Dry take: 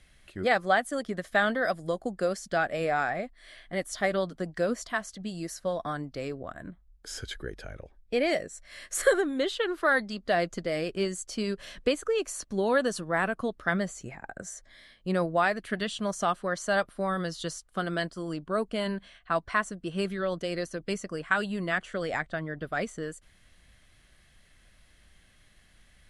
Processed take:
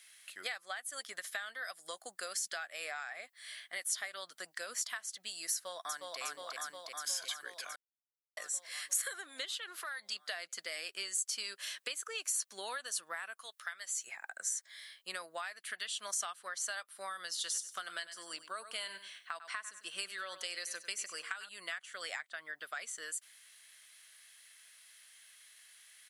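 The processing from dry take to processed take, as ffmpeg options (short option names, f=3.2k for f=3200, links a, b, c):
-filter_complex "[0:a]asplit=2[a][b];[b]afade=t=in:st=5.53:d=0.01,afade=t=out:st=6.2:d=0.01,aecho=0:1:360|720|1080|1440|1800|2160|2520|2880|3240|3600|3960|4320:0.794328|0.595746|0.44681|0.335107|0.25133|0.188498|0.141373|0.10603|0.0795225|0.0596419|0.0447314|0.0335486[c];[a][c]amix=inputs=2:normalize=0,asettb=1/sr,asplit=3[d][e][f];[d]atrim=end=9.454[g];[e]atrim=start=9.45:end=10.12,asetpts=PTS-STARTPTS,afade=t=in:d=0.004:c=qsin,afade=t=out:st=0.666:d=0.004:c=qsin,acompressor=threshold=-33dB:ratio=6:attack=3.2:release=140:knee=1:detection=peak[h];[f]atrim=start=10.116[i];[g][h]acrossfade=d=0.004:c1=hsin:c2=qsin[j];[j][i]acrossfade=d=0.004:c1=qsin:c2=hsin,asettb=1/sr,asplit=3[k][l][m];[k]atrim=end=13.394[n];[l]atrim=start=13.39:end=14.07,asetpts=PTS-STARTPTS,afade=t=in:d=0.004:c=qsin,afade=t=out:st=0.676:d=0.004:c=qsin,highpass=f=1.3k:p=1[o];[m]atrim=start=14.066[p];[n][o]acrossfade=d=0.004:c1=hsin:c2=qsin[q];[q][p]acrossfade=d=0.004:c1=qsin:c2=hsin,asettb=1/sr,asplit=3[r][s][t];[r]atrim=end=17.294[u];[s]atrim=start=17.29:end=21.49,asetpts=PTS-STARTPTS,afade=t=in:d=0.004:c=qsin,afade=t=out:st=4.196:d=0.004:c=qsin,aecho=1:1:97|194|291:0.2|0.0479|0.0115,atrim=end_sample=185220[v];[t]atrim=start=21.486[w];[u][v]acrossfade=d=0.004:c1=hsin:c2=qsin[x];[x][w]acrossfade=d=0.004:c1=qsin:c2=hsin,asplit=3[y][z][aa];[y]atrim=end=7.76,asetpts=PTS-STARTPTS,afade=t=out:st=7.756:d=0.004:c=hsin[ab];[z]atrim=start=7.76:end=8.37,asetpts=PTS-STARTPTS,volume=0[ac];[aa]atrim=start=8.37,asetpts=PTS-STARTPTS,afade=t=in:d=0.004:c=hsin[ad];[ab][ac][ad]concat=n=3:v=0:a=1,highpass=1.4k,acompressor=threshold=-40dB:ratio=12,aemphasis=mode=production:type=50kf,volume=1dB"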